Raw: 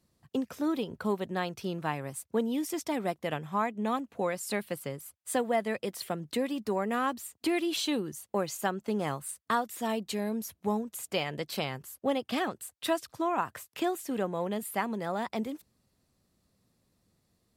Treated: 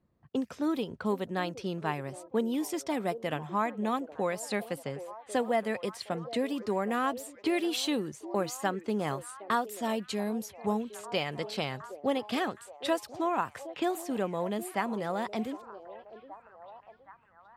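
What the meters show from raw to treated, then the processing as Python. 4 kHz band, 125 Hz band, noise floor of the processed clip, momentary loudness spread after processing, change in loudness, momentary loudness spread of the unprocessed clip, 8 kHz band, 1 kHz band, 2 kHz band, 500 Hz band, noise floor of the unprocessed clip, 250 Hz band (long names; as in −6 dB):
0.0 dB, 0.0 dB, −59 dBFS, 8 LU, 0.0 dB, 5 LU, −3.0 dB, 0.0 dB, 0.0 dB, +0.5 dB, −77 dBFS, 0.0 dB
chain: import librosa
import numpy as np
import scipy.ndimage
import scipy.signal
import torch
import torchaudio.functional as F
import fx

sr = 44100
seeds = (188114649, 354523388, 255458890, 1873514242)

y = fx.echo_stepped(x, sr, ms=767, hz=470.0, octaves=0.7, feedback_pct=70, wet_db=-11)
y = fx.env_lowpass(y, sr, base_hz=1600.0, full_db=-28.5)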